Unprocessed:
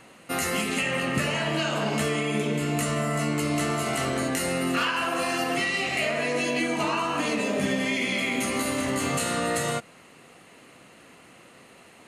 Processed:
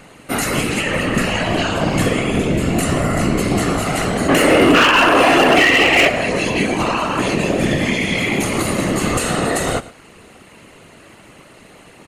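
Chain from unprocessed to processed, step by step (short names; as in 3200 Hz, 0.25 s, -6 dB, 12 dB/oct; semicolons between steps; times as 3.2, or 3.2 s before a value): whisperiser; spectral gain 4.29–6.08, 240–3500 Hz +9 dB; hard clip -14 dBFS, distortion -16 dB; low shelf 320 Hz +4.5 dB; echo 0.112 s -18 dB; gain +6.5 dB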